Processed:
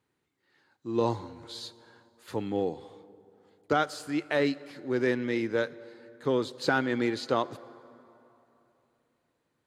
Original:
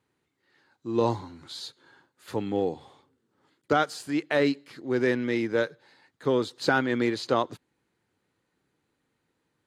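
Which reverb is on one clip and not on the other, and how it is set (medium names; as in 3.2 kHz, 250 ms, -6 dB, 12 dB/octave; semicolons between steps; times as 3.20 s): plate-style reverb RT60 3.2 s, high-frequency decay 0.55×, DRR 18 dB; trim -2.5 dB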